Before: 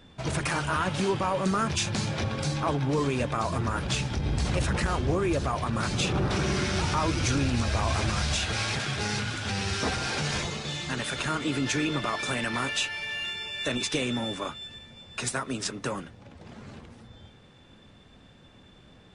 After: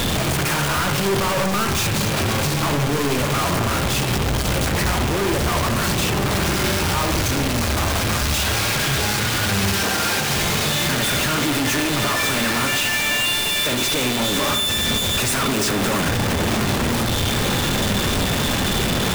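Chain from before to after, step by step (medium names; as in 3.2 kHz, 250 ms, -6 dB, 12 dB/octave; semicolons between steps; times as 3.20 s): one-bit comparator; 9.73–10.30 s: high-pass 180 Hz; echo that smears into a reverb 593 ms, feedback 75%, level -15 dB; on a send at -6 dB: reverberation RT60 0.80 s, pre-delay 51 ms; on the sum: trim +8 dB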